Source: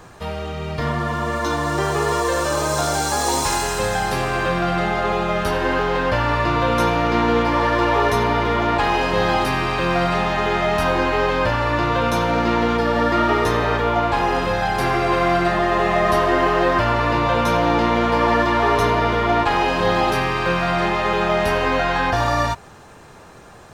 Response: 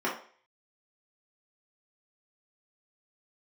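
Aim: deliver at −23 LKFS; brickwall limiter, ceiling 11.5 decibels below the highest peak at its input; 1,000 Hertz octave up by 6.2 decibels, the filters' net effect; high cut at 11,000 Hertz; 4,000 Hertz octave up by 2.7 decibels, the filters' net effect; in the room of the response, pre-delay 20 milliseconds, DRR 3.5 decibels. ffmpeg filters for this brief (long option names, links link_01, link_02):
-filter_complex "[0:a]lowpass=11000,equalizer=frequency=1000:width_type=o:gain=7.5,equalizer=frequency=4000:width_type=o:gain=3,alimiter=limit=-12dB:level=0:latency=1,asplit=2[link_01][link_02];[1:a]atrim=start_sample=2205,adelay=20[link_03];[link_02][link_03]afir=irnorm=-1:irlink=0,volume=-14dB[link_04];[link_01][link_04]amix=inputs=2:normalize=0,volume=-4dB"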